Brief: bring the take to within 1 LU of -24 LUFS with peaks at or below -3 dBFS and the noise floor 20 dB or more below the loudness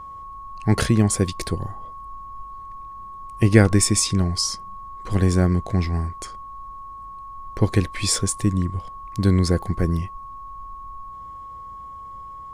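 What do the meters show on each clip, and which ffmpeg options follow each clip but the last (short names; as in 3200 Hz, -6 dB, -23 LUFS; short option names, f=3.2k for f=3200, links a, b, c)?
steady tone 1100 Hz; tone level -35 dBFS; loudness -21.5 LUFS; peak -2.0 dBFS; loudness target -24.0 LUFS
-> -af "bandreject=f=1.1k:w=30"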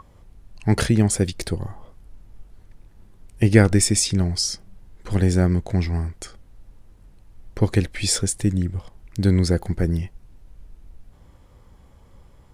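steady tone none; loudness -21.0 LUFS; peak -1.5 dBFS; loudness target -24.0 LUFS
-> -af "volume=-3dB"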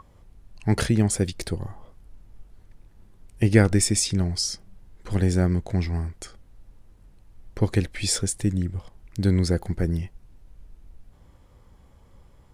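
loudness -24.0 LUFS; peak -4.5 dBFS; noise floor -54 dBFS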